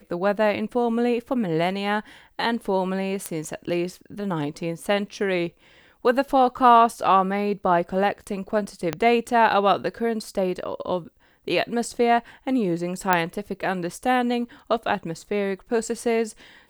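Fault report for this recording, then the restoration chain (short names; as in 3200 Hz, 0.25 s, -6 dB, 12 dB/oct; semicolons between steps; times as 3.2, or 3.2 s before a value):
3.26 pop -11 dBFS
8.93 pop -10 dBFS
13.13 pop -4 dBFS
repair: de-click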